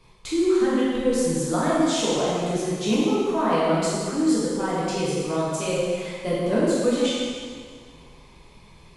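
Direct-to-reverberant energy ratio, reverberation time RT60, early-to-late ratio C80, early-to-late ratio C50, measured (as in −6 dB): −8.0 dB, 1.9 s, −1.0 dB, −3.0 dB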